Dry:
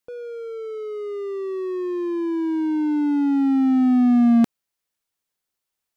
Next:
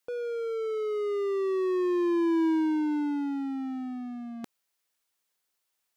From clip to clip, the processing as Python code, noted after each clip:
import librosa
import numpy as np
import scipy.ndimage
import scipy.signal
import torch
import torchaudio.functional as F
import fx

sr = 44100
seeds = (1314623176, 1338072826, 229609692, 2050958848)

y = fx.low_shelf(x, sr, hz=320.0, db=-8.5)
y = fx.over_compress(y, sr, threshold_db=-27.0, ratio=-0.5)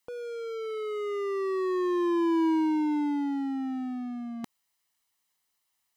y = x + 0.46 * np.pad(x, (int(1.0 * sr / 1000.0), 0))[:len(x)]
y = y * librosa.db_to_amplitude(1.0)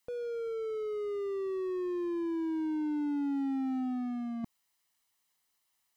y = fx.slew_limit(x, sr, full_power_hz=8.3)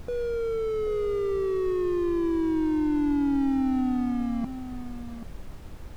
y = fx.dmg_noise_colour(x, sr, seeds[0], colour='brown', level_db=-46.0)
y = y + 10.0 ** (-11.0 / 20.0) * np.pad(y, (int(784 * sr / 1000.0), 0))[:len(y)]
y = y * librosa.db_to_amplitude(7.5)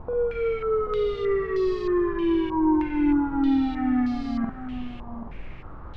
y = fx.doubler(x, sr, ms=48.0, db=-3.5)
y = fx.filter_held_lowpass(y, sr, hz=3.2, low_hz=990.0, high_hz=4600.0)